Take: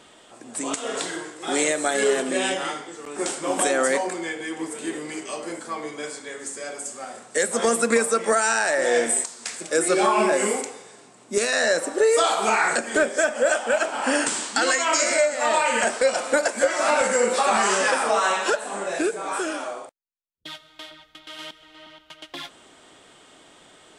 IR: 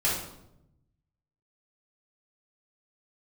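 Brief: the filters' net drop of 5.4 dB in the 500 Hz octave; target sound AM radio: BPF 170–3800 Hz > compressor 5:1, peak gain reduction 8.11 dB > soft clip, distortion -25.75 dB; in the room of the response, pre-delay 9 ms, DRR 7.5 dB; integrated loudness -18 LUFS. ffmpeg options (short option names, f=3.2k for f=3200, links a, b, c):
-filter_complex "[0:a]equalizer=f=500:t=o:g=-6.5,asplit=2[a][b];[1:a]atrim=start_sample=2205,adelay=9[c];[b][c]afir=irnorm=-1:irlink=0,volume=-18dB[d];[a][d]amix=inputs=2:normalize=0,highpass=170,lowpass=3.8k,acompressor=threshold=-25dB:ratio=5,asoftclip=threshold=-17dB,volume=12.5dB"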